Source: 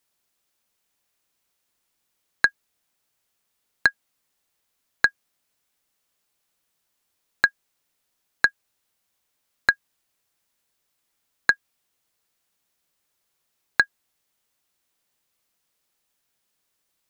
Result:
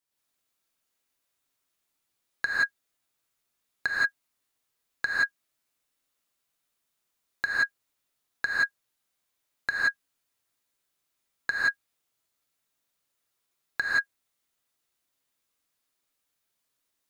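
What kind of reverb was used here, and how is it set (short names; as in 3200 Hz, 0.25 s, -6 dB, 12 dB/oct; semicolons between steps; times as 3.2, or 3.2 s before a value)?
non-linear reverb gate 0.2 s rising, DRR -6.5 dB; gain -11.5 dB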